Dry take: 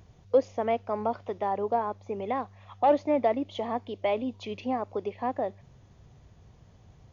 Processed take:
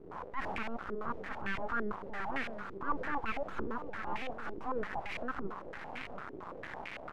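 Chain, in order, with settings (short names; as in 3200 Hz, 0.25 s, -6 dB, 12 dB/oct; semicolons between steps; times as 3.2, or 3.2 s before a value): switching spikes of -25 dBFS; recorder AGC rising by 46 dB/s; low shelf 390 Hz -9.5 dB; limiter -20 dBFS, peak gain reduction 5.5 dB; transient shaper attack -11 dB, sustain +2 dB; echo 0.707 s -9 dB; full-wave rectifier; stepped low-pass 8.9 Hz 390–2300 Hz; gain -3.5 dB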